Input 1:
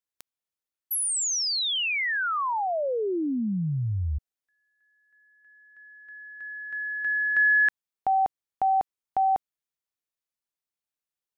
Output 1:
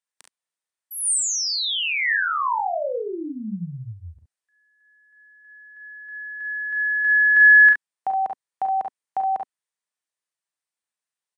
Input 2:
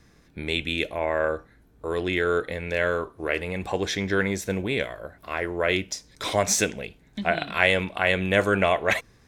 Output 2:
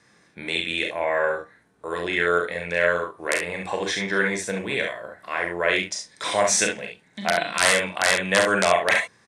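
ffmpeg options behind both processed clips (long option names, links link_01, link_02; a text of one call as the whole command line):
ffmpeg -i in.wav -af "aeval=exprs='(mod(2.66*val(0)+1,2)-1)/2.66':channel_layout=same,highpass=200,equalizer=frequency=270:width_type=q:width=4:gain=-7,equalizer=frequency=390:width_type=q:width=4:gain=-4,equalizer=frequency=1000:width_type=q:width=4:gain=3,equalizer=frequency=1800:width_type=q:width=4:gain=5,equalizer=frequency=8900:width_type=q:width=4:gain=7,lowpass=frequency=9900:width=0.5412,lowpass=frequency=9900:width=1.3066,aecho=1:1:36|46|69:0.422|0.422|0.473" out.wav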